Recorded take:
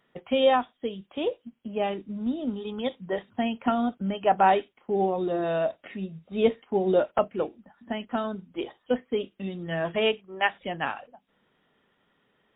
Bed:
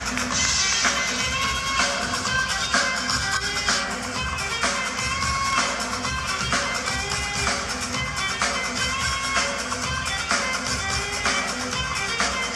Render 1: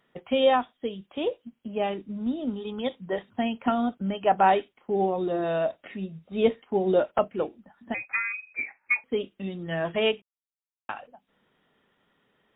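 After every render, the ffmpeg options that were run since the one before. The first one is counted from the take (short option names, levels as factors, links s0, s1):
-filter_complex "[0:a]asettb=1/sr,asplit=3[s0][s1][s2];[s0]atrim=end=7.944[s3];[s1]atrim=start=7.94:end=9.04,asetpts=PTS-STARTPTS,afade=t=in:d=0.004:c=qsin,afade=t=out:st=1.096:d=0.004:c=qsin,lowpass=f=2300:t=q:w=0.5098,lowpass=f=2300:t=q:w=0.6013,lowpass=f=2300:t=q:w=0.9,lowpass=f=2300:t=q:w=2.563,afreqshift=-2700[s4];[s2]atrim=start=9.036[s5];[s3][s4]acrossfade=d=0.004:c1=hsin:c2=qsin[s6];[s6][s5]acrossfade=d=0.004:c1=qsin:c2=hsin,asplit=3[s7][s8][s9];[s7]atrim=end=10.22,asetpts=PTS-STARTPTS,afade=t=out:st=10.216:d=0.004:c=hsin[s10];[s8]atrim=start=10.22:end=10.89,asetpts=PTS-STARTPTS,volume=0[s11];[s9]atrim=start=10.89,asetpts=PTS-STARTPTS,afade=t=in:d=0.004:c=hsin[s12];[s10][s11][s12]concat=n=3:v=0:a=1"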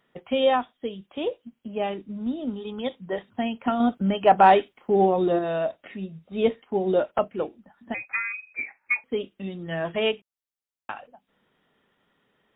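-filter_complex "[0:a]asettb=1/sr,asplit=3[s0][s1][s2];[s0]atrim=end=3.804[s3];[s1]atrim=start=3.8:end=5.39,asetpts=PTS-STARTPTS,afade=t=in:d=0.004:c=qsin,afade=t=out:st=1.586:d=0.004:c=qsin,acontrast=38[s4];[s2]atrim=start=5.386[s5];[s3][s4]acrossfade=d=0.004:c1=hsin:c2=qsin[s6];[s6][s5]acrossfade=d=0.004:c1=qsin:c2=hsin"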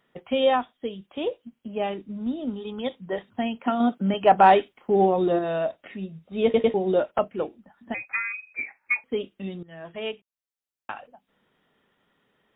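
-filter_complex "[0:a]asettb=1/sr,asplit=3[s0][s1][s2];[s0]atrim=end=3.594[s3];[s1]atrim=start=3.59:end=4.14,asetpts=PTS-STARTPTS,afade=t=in:d=0.004:c=qsin,afade=t=out:st=0.546:d=0.004:c=qsin,highpass=f=150:w=0.5412,highpass=f=150:w=1.3066[s4];[s2]atrim=start=4.136[s5];[s3][s4]acrossfade=d=0.004:c1=hsin:c2=qsin[s6];[s6][s5]acrossfade=d=0.004:c1=qsin:c2=hsin,asplit=5[s7][s8][s9][s10][s11];[s7]atrim=end=6.542[s12];[s8]atrim=start=6.438:end=6.542[s13];[s9]atrim=start=6.438:end=6.542[s14];[s10]atrim=start=6.738:end=9.63,asetpts=PTS-STARTPTS,afade=t=out:st=2.888:d=0.004:c=hsin:silence=0.133352[s15];[s11]atrim=start=9.63,asetpts=PTS-STARTPTS,afade=t=in:d=1.32:silence=0.133352[s16];[s12][s13]acrossfade=d=0.004:c1=hsin:c2=hsin[s17];[s17][s14]acrossfade=d=0.004:c1=hsin:c2=hsin[s18];[s15][s16]concat=n=2:v=0:a=1[s19];[s18][s19]acrossfade=d=0.004:c1=hsin:c2=hsin"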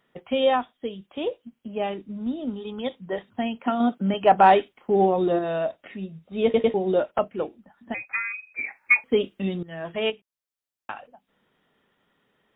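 -filter_complex "[0:a]asplit=3[s0][s1][s2];[s0]atrim=end=8.642[s3];[s1]atrim=start=8.638:end=10.102,asetpts=PTS-STARTPTS,volume=2.11[s4];[s2]atrim=start=10.098[s5];[s3][s4]acrossfade=d=0.004:c1=hsin:c2=hsin[s6];[s6][s5]acrossfade=d=0.004:c1=hsin:c2=hsin"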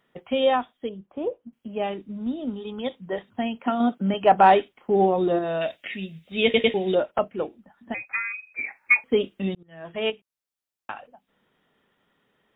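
-filter_complex "[0:a]asettb=1/sr,asplit=3[s0][s1][s2];[s0]atrim=end=0.894[s3];[s1]atrim=start=0.89:end=1.53,asetpts=PTS-STARTPTS,afade=t=in:d=0.004:c=qsin,afade=t=out:st=0.636:d=0.004:c=qsin,lowpass=1200[s4];[s2]atrim=start=1.526[s5];[s3][s4]acrossfade=d=0.004:c1=hsin:c2=qsin[s6];[s6][s5]acrossfade=d=0.004:c1=qsin:c2=hsin,asettb=1/sr,asplit=3[s7][s8][s9];[s7]atrim=end=5.614[s10];[s8]atrim=start=5.61:end=6.95,asetpts=PTS-STARTPTS,afade=t=in:d=0.004:c=qsin,afade=t=out:st=1.336:d=0.004:c=qsin,highshelf=f=1600:t=q:w=1.5:g=10.5[s11];[s9]atrim=start=6.946[s12];[s10][s11]acrossfade=d=0.004:c1=hsin:c2=qsin[s13];[s13][s12]acrossfade=d=0.004:c1=qsin:c2=hsin,asplit=2[s14][s15];[s14]atrim=end=9.55,asetpts=PTS-STARTPTS,afade=t=out:st=9.546:d=0.004:c=hsin[s16];[s15]atrim=start=9.55,asetpts=PTS-STARTPTS,afade=t=in:d=0.54[s17];[s16][s17]concat=n=2:v=0:a=1"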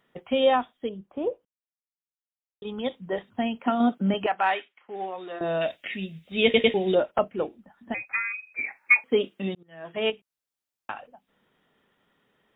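-filter_complex "[0:a]asettb=1/sr,asplit=3[s0][s1][s2];[s0]atrim=end=4.264[s3];[s1]atrim=start=4.26:end=5.41,asetpts=PTS-STARTPTS,afade=t=in:d=0.004:c=qsin,afade=t=out:st=1.146:d=0.004:c=qsin,bandpass=f=2100:t=q:w=1.3[s4];[s2]atrim=start=5.406[s5];[s3][s4]acrossfade=d=0.004:c1=hsin:c2=qsin[s6];[s6][s5]acrossfade=d=0.004:c1=qsin:c2=hsin,asettb=1/sr,asplit=3[s7][s8][s9];[s7]atrim=end=8.794[s10];[s8]atrim=start=8.79:end=9.97,asetpts=PTS-STARTPTS,afade=t=in:d=0.004:c=qsin,afade=t=out:st=1.176:d=0.004:c=qsin,highpass=f=220:p=1[s11];[s9]atrim=start=9.966[s12];[s10][s11]acrossfade=d=0.004:c1=hsin:c2=qsin[s13];[s13][s12]acrossfade=d=0.004:c1=qsin:c2=hsin,asplit=3[s14][s15][s16];[s14]atrim=end=1.45,asetpts=PTS-STARTPTS,afade=t=out:st=1.446:d=0.004:c=hsin[s17];[s15]atrim=start=1.45:end=2.62,asetpts=PTS-STARTPTS,volume=0[s18];[s16]atrim=start=2.62,asetpts=PTS-STARTPTS,afade=t=in:d=0.004:c=hsin[s19];[s17][s18][s19]concat=n=3:v=0:a=1"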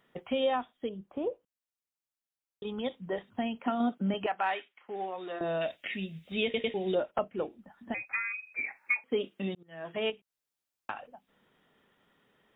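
-af "alimiter=limit=0.282:level=0:latency=1:release=325,acompressor=threshold=0.0126:ratio=1.5"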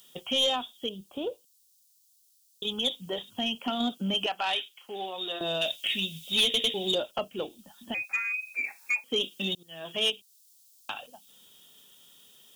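-af "aexciter=amount=14.3:drive=7.7:freq=3200,asoftclip=type=tanh:threshold=0.119"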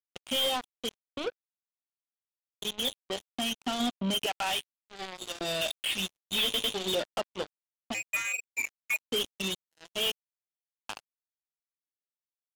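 -af "aresample=8000,asoftclip=type=tanh:threshold=0.0596,aresample=44100,acrusher=bits=4:mix=0:aa=0.5"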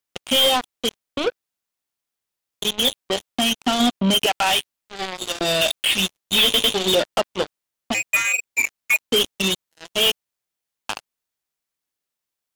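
-af "volume=3.76"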